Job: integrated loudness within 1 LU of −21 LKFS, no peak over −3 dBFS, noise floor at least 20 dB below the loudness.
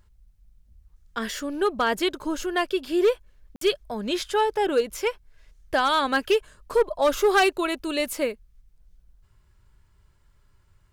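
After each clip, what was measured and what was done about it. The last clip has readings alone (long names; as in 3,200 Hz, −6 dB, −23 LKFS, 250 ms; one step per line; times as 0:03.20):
share of clipped samples 0.6%; peaks flattened at −14.0 dBFS; number of dropouts 1; longest dropout 53 ms; integrated loudness −24.5 LKFS; sample peak −14.0 dBFS; target loudness −21.0 LKFS
→ clipped peaks rebuilt −14 dBFS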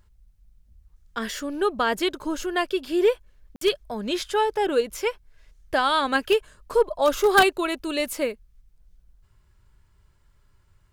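share of clipped samples 0.0%; number of dropouts 1; longest dropout 53 ms
→ repair the gap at 0:03.56, 53 ms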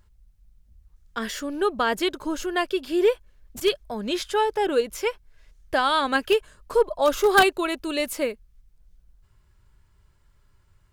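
number of dropouts 0; integrated loudness −24.0 LKFS; sample peak −5.0 dBFS; target loudness −21.0 LKFS
→ level +3 dB
brickwall limiter −3 dBFS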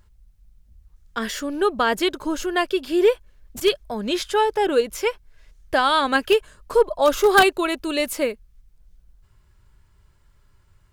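integrated loudness −21.0 LKFS; sample peak −3.0 dBFS; background noise floor −58 dBFS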